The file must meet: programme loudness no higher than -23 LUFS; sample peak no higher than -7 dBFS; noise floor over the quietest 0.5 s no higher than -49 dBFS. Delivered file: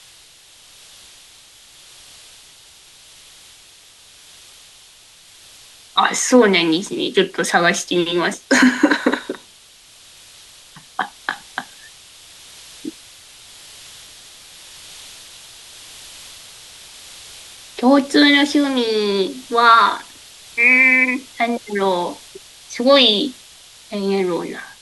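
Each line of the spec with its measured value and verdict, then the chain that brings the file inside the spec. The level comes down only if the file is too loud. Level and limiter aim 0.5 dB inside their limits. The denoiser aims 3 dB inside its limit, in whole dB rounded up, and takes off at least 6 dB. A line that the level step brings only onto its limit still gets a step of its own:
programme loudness -16.0 LUFS: fail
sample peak -2.0 dBFS: fail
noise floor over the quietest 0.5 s -47 dBFS: fail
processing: trim -7.5 dB

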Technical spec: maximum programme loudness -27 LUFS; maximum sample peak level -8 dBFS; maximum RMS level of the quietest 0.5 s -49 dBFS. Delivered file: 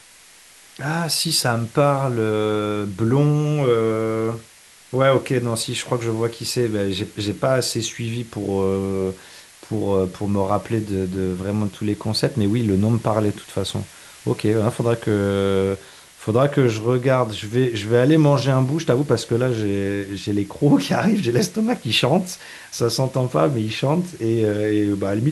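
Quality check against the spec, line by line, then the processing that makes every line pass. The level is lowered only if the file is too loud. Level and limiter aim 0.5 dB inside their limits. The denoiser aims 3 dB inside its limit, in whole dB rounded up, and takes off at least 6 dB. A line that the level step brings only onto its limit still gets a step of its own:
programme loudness -21.0 LUFS: fail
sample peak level -4.5 dBFS: fail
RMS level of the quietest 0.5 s -48 dBFS: fail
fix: trim -6.5 dB

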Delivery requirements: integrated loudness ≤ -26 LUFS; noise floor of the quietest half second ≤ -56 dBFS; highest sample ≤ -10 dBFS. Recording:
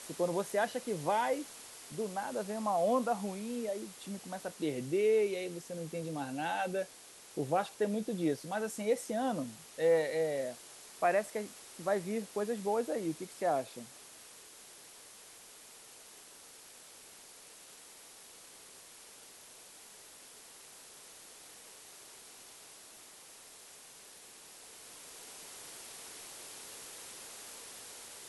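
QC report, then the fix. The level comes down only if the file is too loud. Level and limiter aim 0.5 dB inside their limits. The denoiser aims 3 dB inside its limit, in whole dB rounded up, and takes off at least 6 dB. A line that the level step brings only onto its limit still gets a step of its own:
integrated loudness -35.5 LUFS: pass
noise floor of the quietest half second -55 dBFS: fail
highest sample -17.0 dBFS: pass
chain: noise reduction 6 dB, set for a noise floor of -55 dBFS

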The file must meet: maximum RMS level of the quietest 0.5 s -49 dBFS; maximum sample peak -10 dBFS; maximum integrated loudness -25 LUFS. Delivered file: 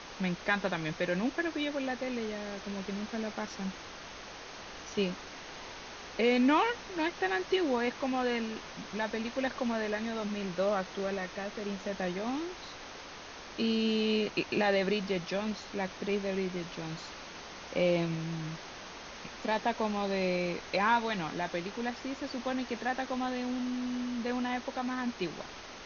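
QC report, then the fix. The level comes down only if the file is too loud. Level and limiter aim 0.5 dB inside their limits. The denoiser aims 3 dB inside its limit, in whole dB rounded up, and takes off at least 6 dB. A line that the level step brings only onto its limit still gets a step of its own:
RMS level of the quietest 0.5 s -46 dBFS: fail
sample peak -15.0 dBFS: pass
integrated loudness -33.0 LUFS: pass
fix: noise reduction 6 dB, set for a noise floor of -46 dBFS

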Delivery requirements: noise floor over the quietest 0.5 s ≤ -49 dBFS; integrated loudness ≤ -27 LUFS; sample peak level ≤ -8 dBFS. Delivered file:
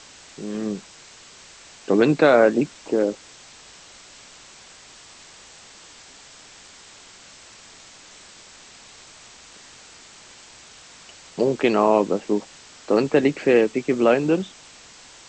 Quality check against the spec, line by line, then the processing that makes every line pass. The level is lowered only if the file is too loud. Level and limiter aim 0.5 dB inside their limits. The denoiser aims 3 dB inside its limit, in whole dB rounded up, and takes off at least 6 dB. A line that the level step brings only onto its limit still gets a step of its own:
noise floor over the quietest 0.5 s -47 dBFS: fail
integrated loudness -20.5 LUFS: fail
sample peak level -3.0 dBFS: fail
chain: trim -7 dB

